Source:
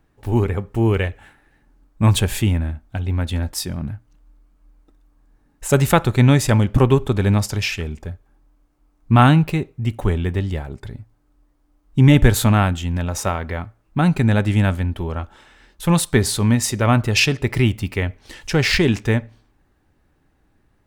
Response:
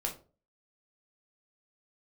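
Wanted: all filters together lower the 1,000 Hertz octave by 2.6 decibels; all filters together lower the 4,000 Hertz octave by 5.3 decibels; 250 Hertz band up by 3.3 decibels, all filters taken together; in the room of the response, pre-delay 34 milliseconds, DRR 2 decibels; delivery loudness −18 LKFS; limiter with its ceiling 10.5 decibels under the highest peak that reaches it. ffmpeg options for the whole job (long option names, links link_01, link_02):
-filter_complex "[0:a]equalizer=frequency=250:width_type=o:gain=4.5,equalizer=frequency=1000:width_type=o:gain=-3.5,equalizer=frequency=4000:width_type=o:gain=-7,alimiter=limit=-10dB:level=0:latency=1,asplit=2[link_01][link_02];[1:a]atrim=start_sample=2205,adelay=34[link_03];[link_02][link_03]afir=irnorm=-1:irlink=0,volume=-4.5dB[link_04];[link_01][link_04]amix=inputs=2:normalize=0,volume=1dB"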